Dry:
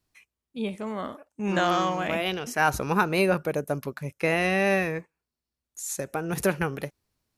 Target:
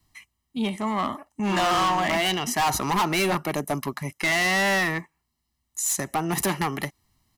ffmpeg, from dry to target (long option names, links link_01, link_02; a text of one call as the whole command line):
ffmpeg -i in.wav -filter_complex "[0:a]aecho=1:1:1:0.8,acrossover=split=240|2400[link_01][link_02][link_03];[link_01]acompressor=threshold=-43dB:ratio=6[link_04];[link_04][link_02][link_03]amix=inputs=3:normalize=0,asoftclip=type=hard:threshold=-26.5dB,volume=7dB" out.wav